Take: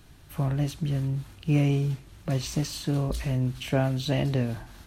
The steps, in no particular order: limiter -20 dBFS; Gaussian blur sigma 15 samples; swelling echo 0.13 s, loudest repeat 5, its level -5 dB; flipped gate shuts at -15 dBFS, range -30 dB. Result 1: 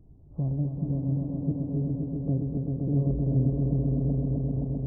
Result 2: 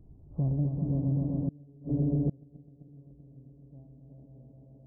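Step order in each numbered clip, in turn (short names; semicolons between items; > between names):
flipped gate > Gaussian blur > limiter > swelling echo; swelling echo > flipped gate > Gaussian blur > limiter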